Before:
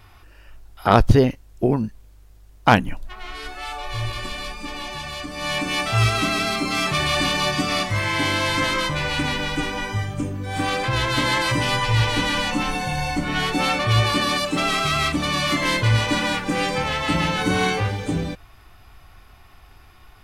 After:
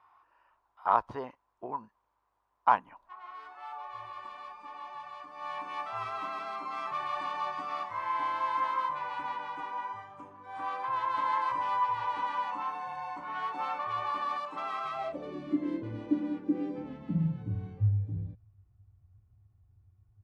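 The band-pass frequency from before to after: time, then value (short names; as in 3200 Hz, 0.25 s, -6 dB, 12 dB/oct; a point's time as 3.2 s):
band-pass, Q 6.3
14.89 s 1000 Hz
15.42 s 310 Hz
16.79 s 310 Hz
17.57 s 100 Hz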